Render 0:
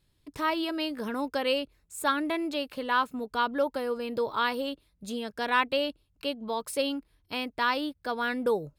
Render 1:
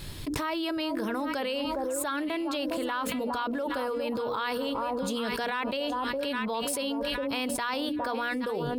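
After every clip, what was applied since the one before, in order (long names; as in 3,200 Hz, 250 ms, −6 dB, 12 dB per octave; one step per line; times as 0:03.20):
mains-hum notches 60/120/180/240/300/360/420/480/540 Hz
delay that swaps between a low-pass and a high-pass 409 ms, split 1,000 Hz, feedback 54%, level −9.5 dB
envelope flattener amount 100%
level −9 dB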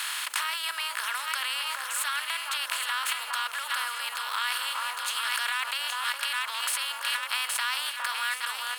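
compressor on every frequency bin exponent 0.4
high-pass filter 1,200 Hz 24 dB per octave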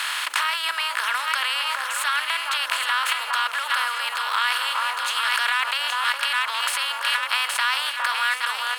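high-shelf EQ 5,500 Hz −10.5 dB
level +8.5 dB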